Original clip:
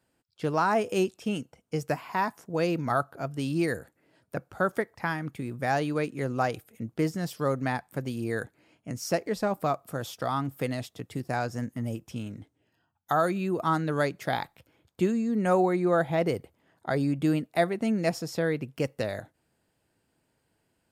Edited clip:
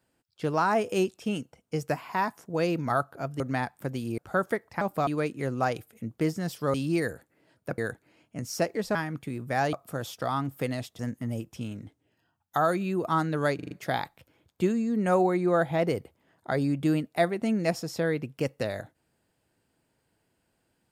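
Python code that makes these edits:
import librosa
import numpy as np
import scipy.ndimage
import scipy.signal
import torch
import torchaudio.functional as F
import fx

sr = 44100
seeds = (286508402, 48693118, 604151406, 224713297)

y = fx.edit(x, sr, fx.swap(start_s=3.4, length_s=1.04, other_s=7.52, other_length_s=0.78),
    fx.swap(start_s=5.07, length_s=0.78, other_s=9.47, other_length_s=0.26),
    fx.cut(start_s=10.99, length_s=0.55),
    fx.stutter(start_s=14.1, slice_s=0.04, count=5), tone=tone)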